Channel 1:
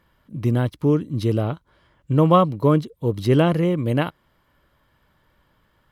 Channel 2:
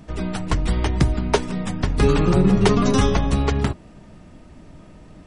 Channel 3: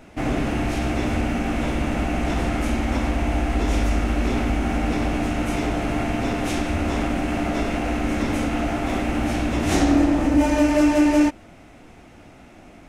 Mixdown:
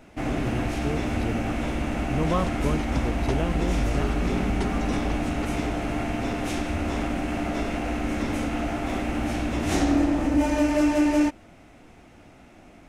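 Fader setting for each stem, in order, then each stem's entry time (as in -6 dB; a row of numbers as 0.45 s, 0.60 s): -11.5 dB, -15.0 dB, -4.0 dB; 0.00 s, 1.95 s, 0.00 s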